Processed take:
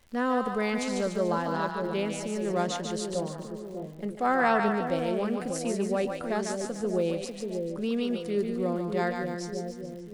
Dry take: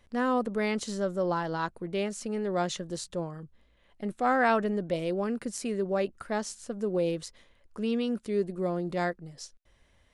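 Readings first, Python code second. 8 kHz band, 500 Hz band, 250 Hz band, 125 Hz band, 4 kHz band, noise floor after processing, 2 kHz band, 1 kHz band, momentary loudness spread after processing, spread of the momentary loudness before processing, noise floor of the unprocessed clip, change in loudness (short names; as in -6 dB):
+1.5 dB, +1.5 dB, +1.5 dB, +1.5 dB, +2.0 dB, -41 dBFS, +1.5 dB, +1.5 dB, 9 LU, 11 LU, -65 dBFS, +1.0 dB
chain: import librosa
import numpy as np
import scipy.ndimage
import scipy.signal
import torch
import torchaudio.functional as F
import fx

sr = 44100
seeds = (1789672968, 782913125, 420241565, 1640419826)

y = fx.echo_split(x, sr, split_hz=610.0, low_ms=595, high_ms=146, feedback_pct=52, wet_db=-4.5)
y = fx.dmg_crackle(y, sr, seeds[0], per_s=160.0, level_db=-45.0)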